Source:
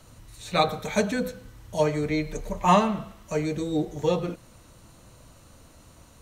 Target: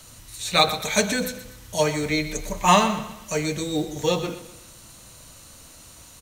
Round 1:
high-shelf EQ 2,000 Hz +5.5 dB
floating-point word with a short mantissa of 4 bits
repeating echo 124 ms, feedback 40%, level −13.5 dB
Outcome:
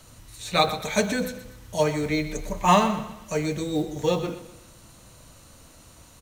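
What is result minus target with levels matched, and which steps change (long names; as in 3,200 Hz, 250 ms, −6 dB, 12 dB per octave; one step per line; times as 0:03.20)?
4,000 Hz band −4.0 dB
change: high-shelf EQ 2,000 Hz +13 dB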